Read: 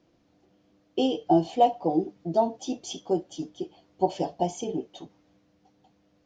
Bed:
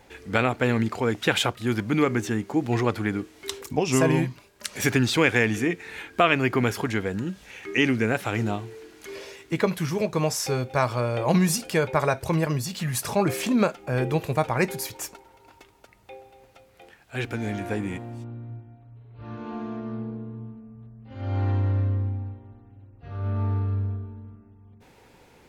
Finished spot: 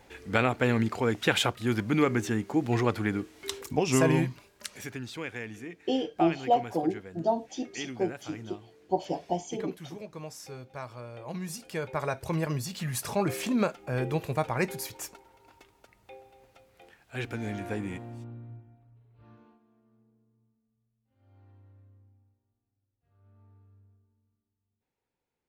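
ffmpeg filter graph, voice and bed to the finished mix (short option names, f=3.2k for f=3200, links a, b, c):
-filter_complex "[0:a]adelay=4900,volume=-3.5dB[a];[1:a]volume=9.5dB,afade=t=out:st=4.52:d=0.33:silence=0.188365,afade=t=in:st=11.37:d=1.16:silence=0.251189,afade=t=out:st=18.25:d=1.34:silence=0.0375837[b];[a][b]amix=inputs=2:normalize=0"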